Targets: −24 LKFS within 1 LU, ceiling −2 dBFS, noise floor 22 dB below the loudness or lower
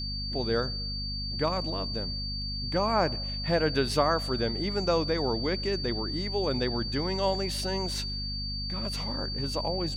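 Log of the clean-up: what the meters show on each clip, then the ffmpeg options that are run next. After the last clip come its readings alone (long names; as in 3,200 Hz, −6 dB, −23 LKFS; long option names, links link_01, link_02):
mains hum 50 Hz; hum harmonics up to 250 Hz; level of the hum −34 dBFS; interfering tone 4,600 Hz; level of the tone −34 dBFS; integrated loudness −29.0 LKFS; sample peak −11.5 dBFS; target loudness −24.0 LKFS
→ -af "bandreject=frequency=50:width_type=h:width=6,bandreject=frequency=100:width_type=h:width=6,bandreject=frequency=150:width_type=h:width=6,bandreject=frequency=200:width_type=h:width=6,bandreject=frequency=250:width_type=h:width=6"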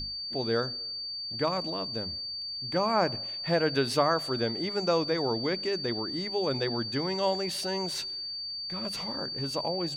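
mains hum none found; interfering tone 4,600 Hz; level of the tone −34 dBFS
→ -af "bandreject=frequency=4600:width=30"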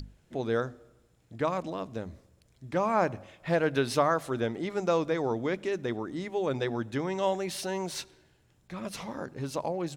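interfering tone none found; integrated loudness −31.0 LKFS; sample peak −12.5 dBFS; target loudness −24.0 LKFS
→ -af "volume=7dB"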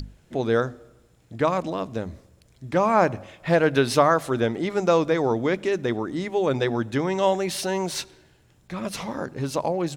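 integrated loudness −24.0 LKFS; sample peak −5.5 dBFS; background noise floor −59 dBFS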